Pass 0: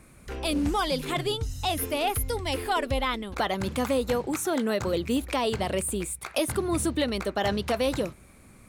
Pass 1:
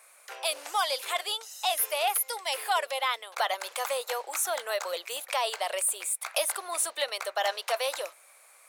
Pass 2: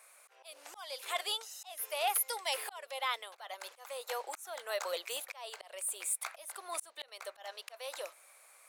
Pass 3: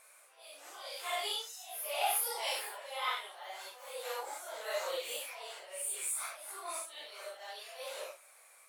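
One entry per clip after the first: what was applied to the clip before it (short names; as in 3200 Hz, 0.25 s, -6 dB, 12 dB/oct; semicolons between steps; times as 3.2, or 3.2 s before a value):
steep high-pass 570 Hz 36 dB/oct; high shelf 6300 Hz +6 dB
auto swell 0.497 s; gain -3.5 dB
phase scrambler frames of 0.2 s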